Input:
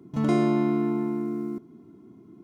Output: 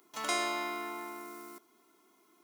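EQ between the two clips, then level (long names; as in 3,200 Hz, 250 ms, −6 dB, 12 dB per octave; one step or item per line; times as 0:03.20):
high-pass filter 670 Hz 12 dB per octave
spectral tilt +4 dB per octave
0.0 dB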